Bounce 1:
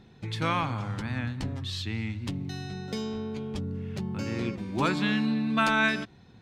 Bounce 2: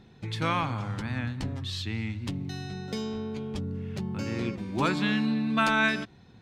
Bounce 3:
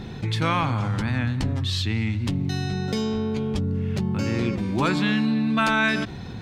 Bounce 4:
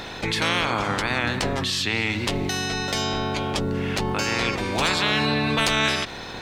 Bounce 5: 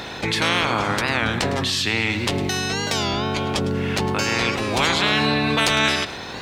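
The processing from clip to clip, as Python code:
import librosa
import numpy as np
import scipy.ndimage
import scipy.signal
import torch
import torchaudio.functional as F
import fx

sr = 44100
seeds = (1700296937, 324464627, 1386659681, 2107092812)

y1 = x
y2 = fx.low_shelf(y1, sr, hz=110.0, db=4.5)
y2 = fx.env_flatten(y2, sr, amount_pct=50)
y2 = y2 * librosa.db_to_amplitude(2.0)
y3 = fx.spec_clip(y2, sr, under_db=23)
y4 = scipy.signal.sosfilt(scipy.signal.butter(2, 52.0, 'highpass', fs=sr, output='sos'), y3)
y4 = y4 + 10.0 ** (-15.0 / 20.0) * np.pad(y4, (int(106 * sr / 1000.0), 0))[:len(y4)]
y4 = fx.record_warp(y4, sr, rpm=33.33, depth_cents=160.0)
y4 = y4 * librosa.db_to_amplitude(2.5)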